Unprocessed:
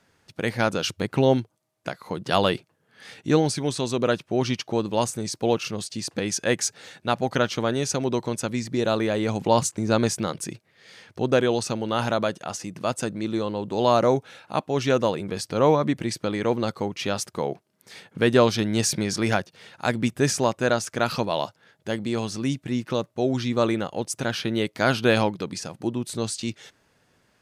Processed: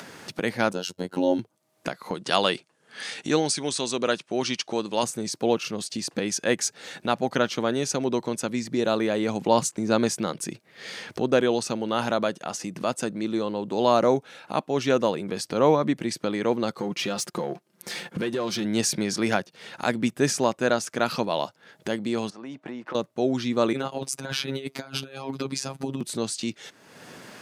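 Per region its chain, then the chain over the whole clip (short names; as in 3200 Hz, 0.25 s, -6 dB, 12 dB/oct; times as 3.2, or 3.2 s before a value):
0.73–1.39 robotiser 90.8 Hz + bell 2100 Hz -9.5 dB 0.79 oct + notch comb 1200 Hz
2.14–5.03 steep low-pass 10000 Hz + tilt +2 dB/oct
16.78–18.65 comb 5.7 ms, depth 49% + compressor, threshold -26 dBFS + sample leveller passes 1
22.3–22.95 band-pass 850 Hz, Q 1.4 + compressor 5:1, threshold -39 dBFS
23.73–26.01 comb 6.6 ms + robotiser 135 Hz + negative-ratio compressor -30 dBFS, ratio -0.5
whole clip: Chebyshev high-pass 190 Hz, order 2; upward compressor, threshold -26 dBFS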